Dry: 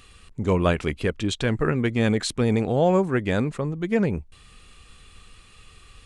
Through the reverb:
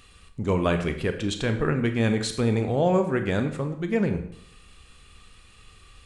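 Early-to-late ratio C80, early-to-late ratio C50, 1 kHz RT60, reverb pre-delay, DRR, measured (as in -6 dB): 12.5 dB, 9.5 dB, 0.65 s, 25 ms, 7.0 dB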